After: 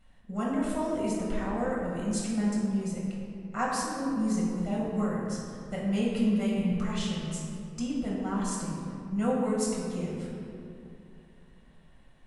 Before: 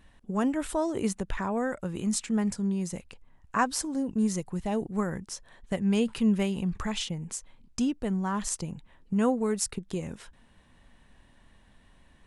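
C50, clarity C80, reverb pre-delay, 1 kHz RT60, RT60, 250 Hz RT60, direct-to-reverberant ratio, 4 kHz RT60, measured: −0.5 dB, 1.0 dB, 5 ms, 2.4 s, 2.6 s, 3.3 s, −5.5 dB, 1.4 s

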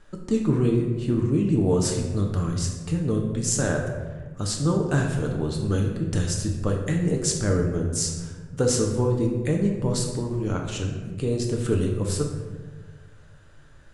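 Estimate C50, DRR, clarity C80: 4.0 dB, 0.5 dB, 6.5 dB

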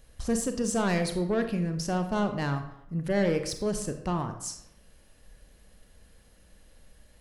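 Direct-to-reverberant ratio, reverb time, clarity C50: 7.0 dB, 0.80 s, 9.0 dB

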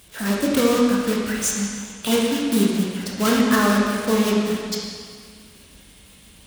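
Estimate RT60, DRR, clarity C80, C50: 2.0 s, −3.5 dB, 1.5 dB, −0.5 dB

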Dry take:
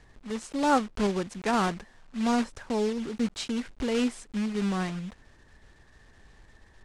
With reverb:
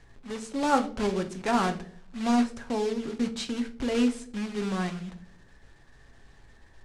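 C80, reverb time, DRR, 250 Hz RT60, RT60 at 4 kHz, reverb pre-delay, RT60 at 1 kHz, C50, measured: 18.5 dB, 0.60 s, 6.0 dB, 0.70 s, 0.35 s, 6 ms, 0.45 s, 14.5 dB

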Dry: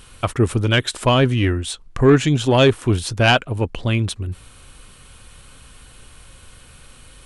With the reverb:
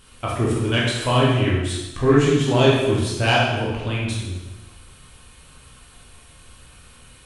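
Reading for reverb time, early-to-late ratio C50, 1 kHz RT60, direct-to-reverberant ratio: 1.1 s, 0.0 dB, 1.1 s, −5.5 dB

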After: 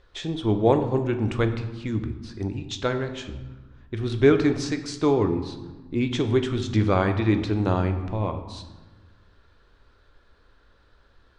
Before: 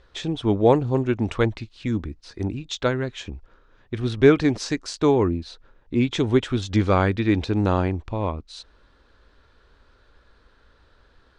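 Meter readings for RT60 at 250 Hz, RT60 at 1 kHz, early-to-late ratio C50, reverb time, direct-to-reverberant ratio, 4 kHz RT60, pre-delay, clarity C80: 1.7 s, 1.2 s, 10.0 dB, 1.2 s, 7.0 dB, 0.80 s, 3 ms, 11.5 dB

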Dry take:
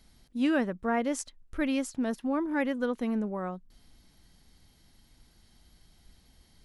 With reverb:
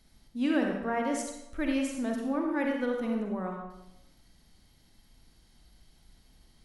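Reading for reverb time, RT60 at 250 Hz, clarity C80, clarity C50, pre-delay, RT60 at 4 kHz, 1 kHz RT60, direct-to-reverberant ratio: 0.90 s, 0.85 s, 5.5 dB, 2.5 dB, 39 ms, 0.70 s, 0.90 s, 1.0 dB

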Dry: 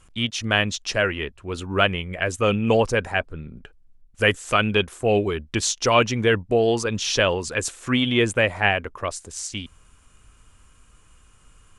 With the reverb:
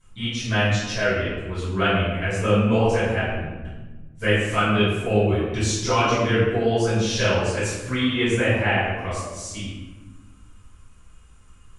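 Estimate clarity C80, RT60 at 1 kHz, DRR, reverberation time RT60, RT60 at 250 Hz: 2.0 dB, 1.1 s, −13.0 dB, 1.2 s, 1.9 s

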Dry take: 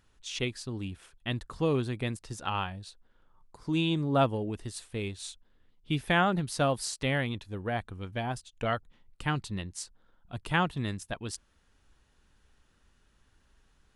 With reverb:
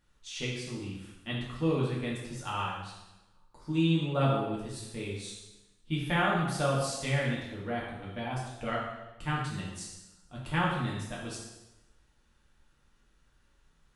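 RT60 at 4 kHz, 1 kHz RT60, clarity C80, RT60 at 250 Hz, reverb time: 0.95 s, 0.95 s, 4.0 dB, 1.1 s, 1.0 s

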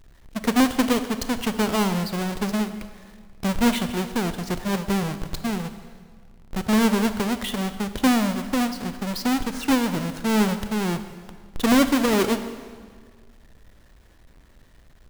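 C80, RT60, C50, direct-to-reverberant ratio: 12.0 dB, 1.8 s, 11.0 dB, 10.0 dB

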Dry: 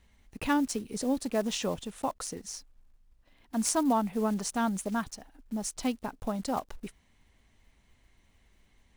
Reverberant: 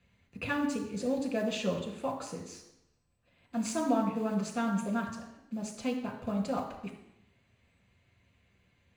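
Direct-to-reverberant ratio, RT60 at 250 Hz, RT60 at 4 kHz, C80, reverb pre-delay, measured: 1.5 dB, 0.85 s, 0.90 s, 9.5 dB, 3 ms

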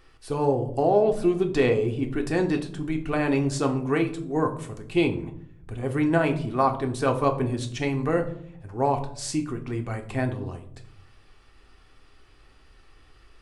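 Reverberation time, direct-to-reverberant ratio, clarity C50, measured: 0.65 s, 4.0 dB, 12.0 dB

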